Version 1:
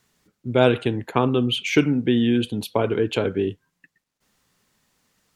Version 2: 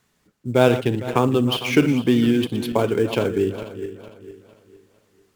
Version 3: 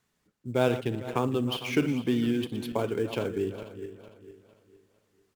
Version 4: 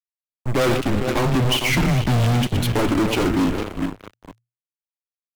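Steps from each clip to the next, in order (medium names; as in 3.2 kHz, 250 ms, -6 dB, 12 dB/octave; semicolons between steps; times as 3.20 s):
backward echo that repeats 227 ms, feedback 58%, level -11 dB; in parallel at -8 dB: sample-rate reducer 7.9 kHz, jitter 20%; on the sum: trim -1.5 dB
echo from a far wall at 59 m, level -23 dB; trim -9 dB
fuzz box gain 35 dB, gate -44 dBFS; frequency shift -120 Hz; trim -2.5 dB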